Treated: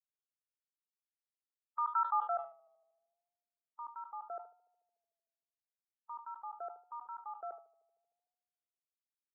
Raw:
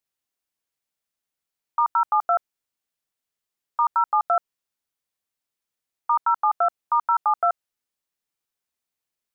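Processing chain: expander on every frequency bin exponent 1.5; dynamic bell 290 Hz, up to -4 dB, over -41 dBFS, Q 0.79; band-pass sweep 1.5 kHz -> 360 Hz, 1.82–3.18 s; on a send: tape echo 75 ms, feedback 86%, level -21 dB, low-pass 1 kHz; on the sum: decay stretcher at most 150 dB/s; trim -8 dB

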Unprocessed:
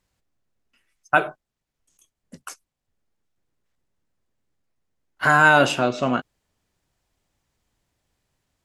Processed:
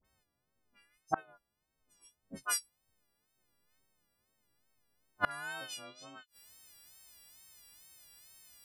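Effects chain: partials quantised in pitch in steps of 3 st; treble shelf 2.2 kHz -11.5 dB, from 2.40 s -2.5 dB, from 5.27 s +11.5 dB; wow and flutter 93 cents; band-stop 6.7 kHz, Q 5.4; phase dispersion highs, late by 44 ms, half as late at 1.4 kHz; inverted gate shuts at -16 dBFS, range -33 dB

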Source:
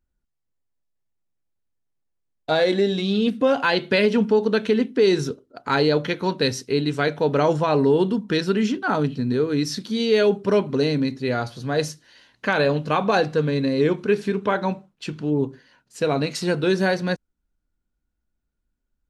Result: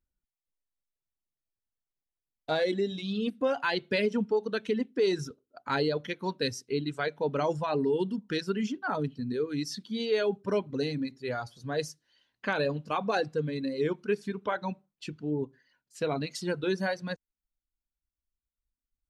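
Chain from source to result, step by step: reverb removal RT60 1.9 s; trim -8 dB

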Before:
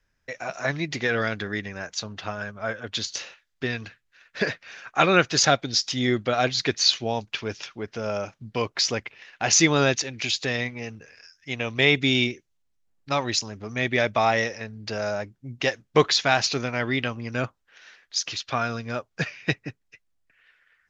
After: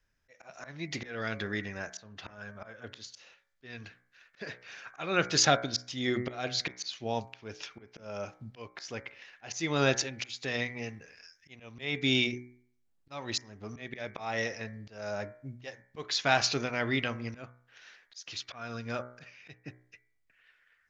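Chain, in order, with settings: slow attack 349 ms; de-hum 61.58 Hz, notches 38; trim -4 dB

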